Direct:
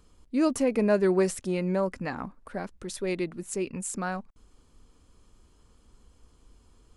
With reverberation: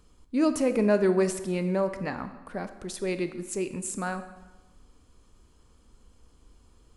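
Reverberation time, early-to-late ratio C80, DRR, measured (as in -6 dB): 1.2 s, 13.0 dB, 10.0 dB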